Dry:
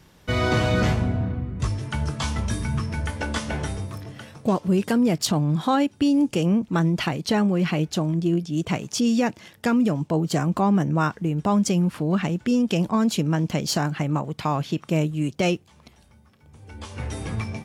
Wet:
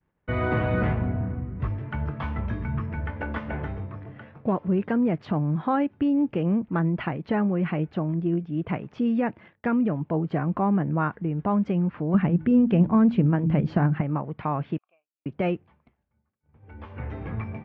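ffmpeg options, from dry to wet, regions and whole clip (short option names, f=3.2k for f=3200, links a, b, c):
-filter_complex "[0:a]asettb=1/sr,asplit=3[a][b][c];[a]atrim=end=12.144[d];[b]atrim=start=12.14:end=14.01,asetpts=PTS-STARTPTS,afade=t=in:d=0.004:c=qsin,afade=t=out:st=1.866:d=0.004:c=qsin,lowshelf=f=250:g=11,bandreject=f=79.25:t=h:w=4,bandreject=f=158.5:t=h:w=4,bandreject=f=237.75:t=h:w=4,bandreject=f=317:t=h:w=4[e];[c]atrim=start=14.006[f];[d][e]acrossfade=d=0.004:c1=hsin:c2=qsin[g];[g][f]acrossfade=d=0.004:c1=qsin:c2=hsin,asettb=1/sr,asplit=3[h][i][j];[h]atrim=end=14.784[k];[i]atrim=start=14.78:end=15.26,asetpts=PTS-STARTPTS,afade=t=in:d=0.004:c=qsin,afade=t=out:st=0.476:d=0.004:c=qsin,asplit=3[l][m][n];[l]bandpass=f=730:t=q:w=8,volume=0dB[o];[m]bandpass=f=1.09k:t=q:w=8,volume=-6dB[p];[n]bandpass=f=2.44k:t=q:w=8,volume=-9dB[q];[o][p][q]amix=inputs=3:normalize=0,aderivative[r];[j]atrim=start=15.256[s];[k][r]acrossfade=d=0.004:c1=hsin:c2=qsin[t];[t][s]acrossfade=d=0.004:c1=qsin:c2=hsin,lowpass=f=2.2k:w=0.5412,lowpass=f=2.2k:w=1.3066,agate=range=-33dB:threshold=-42dB:ratio=3:detection=peak,volume=-3dB"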